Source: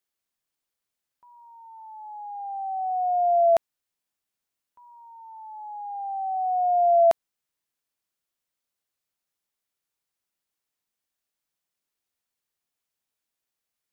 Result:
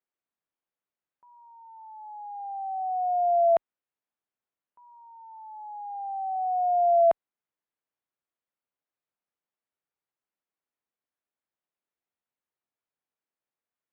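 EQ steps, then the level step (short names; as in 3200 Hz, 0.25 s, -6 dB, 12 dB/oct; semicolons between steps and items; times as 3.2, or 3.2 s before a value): HPF 500 Hz 6 dB/oct; air absorption 400 m; tilt -2 dB/oct; 0.0 dB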